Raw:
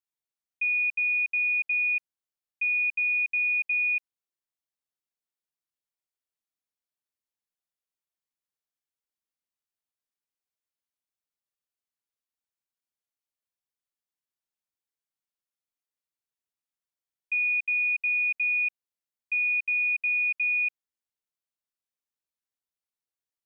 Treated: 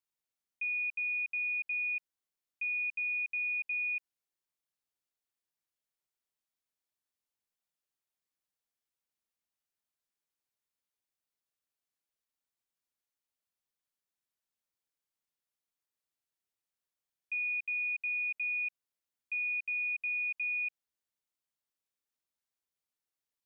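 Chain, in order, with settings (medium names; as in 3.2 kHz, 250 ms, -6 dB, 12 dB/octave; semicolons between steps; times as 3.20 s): peak limiter -30.5 dBFS, peak gain reduction 8 dB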